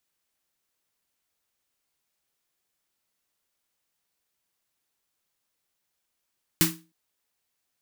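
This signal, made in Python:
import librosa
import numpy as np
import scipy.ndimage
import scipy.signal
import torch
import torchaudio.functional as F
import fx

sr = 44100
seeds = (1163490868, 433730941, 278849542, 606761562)

y = fx.drum_snare(sr, seeds[0], length_s=0.31, hz=170.0, second_hz=320.0, noise_db=3, noise_from_hz=990.0, decay_s=0.33, noise_decay_s=0.26)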